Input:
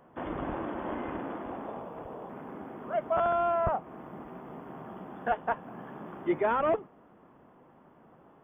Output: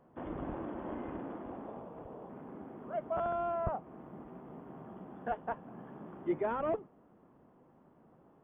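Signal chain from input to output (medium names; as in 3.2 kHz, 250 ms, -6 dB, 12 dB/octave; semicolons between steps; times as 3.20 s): tilt shelf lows +4.5 dB, about 810 Hz; trim -7.5 dB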